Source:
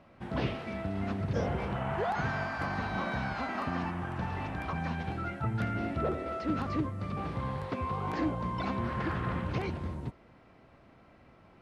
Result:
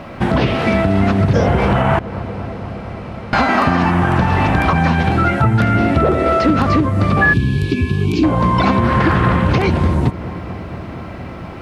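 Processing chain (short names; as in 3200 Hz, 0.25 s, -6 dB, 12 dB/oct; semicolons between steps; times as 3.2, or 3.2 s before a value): 1.99–3.33 room tone; darkening echo 0.233 s, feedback 83%, low-pass 2100 Hz, level -22.5 dB; compressor 4:1, threshold -37 dBFS, peak gain reduction 10 dB; 7.21–8.03 whine 1700 Hz -32 dBFS; 7.33–8.24 spectral gain 440–2200 Hz -25 dB; maximiser +29 dB; gain -3 dB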